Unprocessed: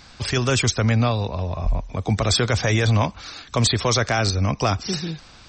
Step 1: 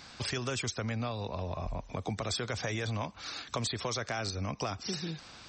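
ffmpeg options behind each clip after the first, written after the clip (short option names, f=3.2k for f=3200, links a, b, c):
-af "highpass=f=140:p=1,acompressor=threshold=-30dB:ratio=4,volume=-3dB"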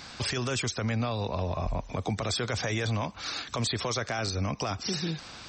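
-af "alimiter=level_in=3dB:limit=-24dB:level=0:latency=1:release=11,volume=-3dB,volume=6dB"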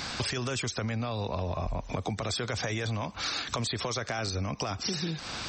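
-af "acompressor=threshold=-38dB:ratio=6,volume=8.5dB"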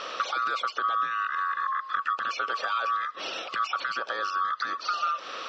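-af "afftfilt=real='real(if(lt(b,960),b+48*(1-2*mod(floor(b/48),2)),b),0)':imag='imag(if(lt(b,960),b+48*(1-2*mod(floor(b/48),2)),b),0)':win_size=2048:overlap=0.75,highpass=440,equalizer=f=530:t=q:w=4:g=6,equalizer=f=1.3k:t=q:w=4:g=8,equalizer=f=2k:t=q:w=4:g=-5,lowpass=f=4.4k:w=0.5412,lowpass=f=4.4k:w=1.3066"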